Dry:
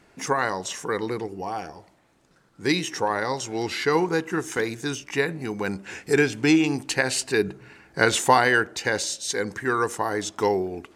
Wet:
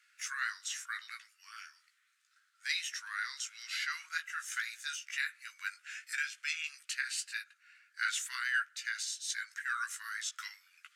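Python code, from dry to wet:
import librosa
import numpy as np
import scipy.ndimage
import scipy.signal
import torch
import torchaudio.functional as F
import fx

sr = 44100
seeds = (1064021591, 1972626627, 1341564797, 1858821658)

y = fx.chorus_voices(x, sr, voices=6, hz=1.0, base_ms=16, depth_ms=3.6, mix_pct=35)
y = scipy.signal.sosfilt(scipy.signal.butter(12, 1300.0, 'highpass', fs=sr, output='sos'), y)
y = fx.rider(y, sr, range_db=3, speed_s=0.5)
y = y * 10.0 ** (-6.0 / 20.0)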